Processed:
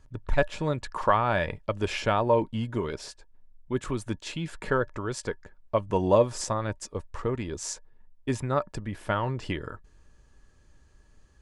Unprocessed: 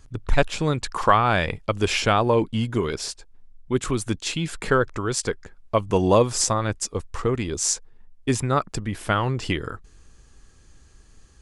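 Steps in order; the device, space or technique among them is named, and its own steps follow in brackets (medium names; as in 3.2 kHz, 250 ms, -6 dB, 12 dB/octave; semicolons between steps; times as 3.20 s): inside a helmet (treble shelf 3.8 kHz -8 dB; small resonant body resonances 590/930/1700 Hz, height 10 dB, ringing for 95 ms); trim -6 dB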